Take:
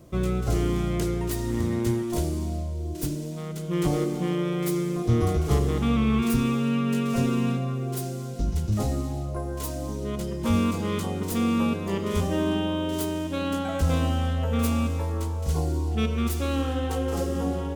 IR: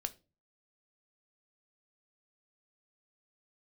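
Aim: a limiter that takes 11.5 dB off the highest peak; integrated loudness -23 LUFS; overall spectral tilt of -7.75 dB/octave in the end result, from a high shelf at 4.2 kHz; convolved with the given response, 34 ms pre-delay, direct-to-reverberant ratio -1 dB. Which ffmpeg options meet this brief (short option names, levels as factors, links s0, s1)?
-filter_complex "[0:a]highshelf=f=4200:g=-8,alimiter=limit=0.0668:level=0:latency=1,asplit=2[s0][s1];[1:a]atrim=start_sample=2205,adelay=34[s2];[s1][s2]afir=irnorm=-1:irlink=0,volume=1.26[s3];[s0][s3]amix=inputs=2:normalize=0,volume=1.58"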